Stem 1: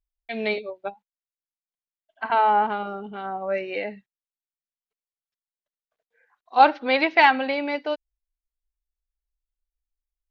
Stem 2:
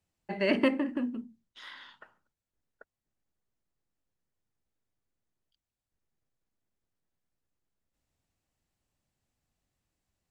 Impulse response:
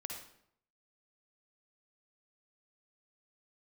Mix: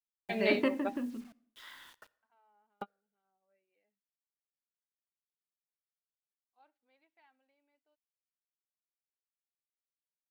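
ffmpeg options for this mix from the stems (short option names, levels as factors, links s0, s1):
-filter_complex "[0:a]agate=range=0.0224:threshold=0.0126:ratio=3:detection=peak,volume=0.562[s0];[1:a]acrusher=bits=8:mix=0:aa=0.000001,adynamicequalizer=threshold=0.00794:dfrequency=2200:dqfactor=0.7:tfrequency=2200:tqfactor=0.7:attack=5:release=100:ratio=0.375:range=2:mode=cutabove:tftype=highshelf,volume=0.531,asplit=3[s1][s2][s3];[s2]volume=0.141[s4];[s3]apad=whole_len=454353[s5];[s0][s5]sidechaingate=range=0.00447:threshold=0.00126:ratio=16:detection=peak[s6];[2:a]atrim=start_sample=2205[s7];[s4][s7]afir=irnorm=-1:irlink=0[s8];[s6][s1][s8]amix=inputs=3:normalize=0"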